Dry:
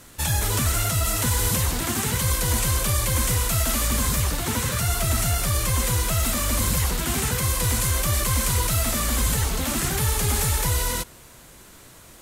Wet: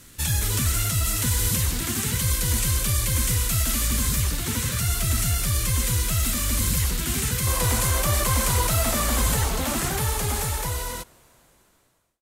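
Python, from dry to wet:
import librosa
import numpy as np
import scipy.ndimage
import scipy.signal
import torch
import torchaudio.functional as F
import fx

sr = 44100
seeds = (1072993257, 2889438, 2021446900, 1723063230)

y = fx.fade_out_tail(x, sr, length_s=2.88)
y = fx.peak_eq(y, sr, hz=750.0, db=fx.steps((0.0, -9.5), (7.47, 4.5)), octaves=1.6)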